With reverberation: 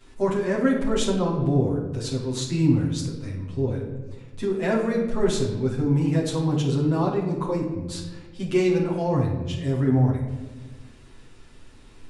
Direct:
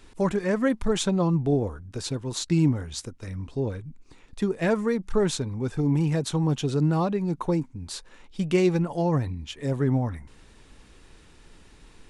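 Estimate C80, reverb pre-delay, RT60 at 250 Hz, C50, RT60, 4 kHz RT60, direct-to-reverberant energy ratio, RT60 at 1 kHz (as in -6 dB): 7.0 dB, 8 ms, 1.8 s, 4.0 dB, 1.3 s, 0.70 s, -9.0 dB, 1.0 s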